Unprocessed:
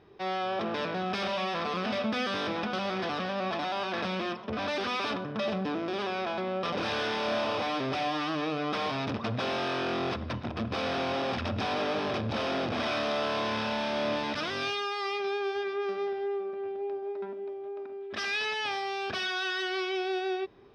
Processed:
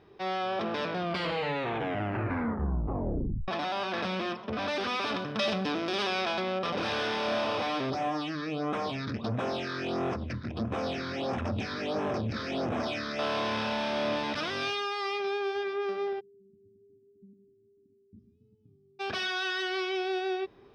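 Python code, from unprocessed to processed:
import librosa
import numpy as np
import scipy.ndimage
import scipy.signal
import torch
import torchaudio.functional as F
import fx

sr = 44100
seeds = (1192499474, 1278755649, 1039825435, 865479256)

y = fx.high_shelf(x, sr, hz=2500.0, db=11.5, at=(5.14, 6.59))
y = fx.phaser_stages(y, sr, stages=6, low_hz=720.0, high_hz=4500.0, hz=1.5, feedback_pct=25, at=(7.9, 13.19))
y = fx.cheby2_lowpass(y, sr, hz=680.0, order=4, stop_db=60, at=(16.19, 18.99), fade=0.02)
y = fx.edit(y, sr, fx.tape_stop(start_s=0.91, length_s=2.57), tone=tone)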